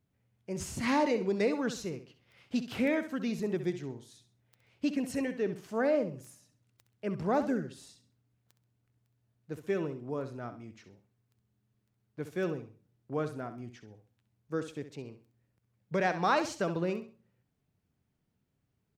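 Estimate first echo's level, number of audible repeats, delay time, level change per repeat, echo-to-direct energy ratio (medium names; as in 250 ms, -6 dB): -11.0 dB, 3, 66 ms, -11.0 dB, -10.5 dB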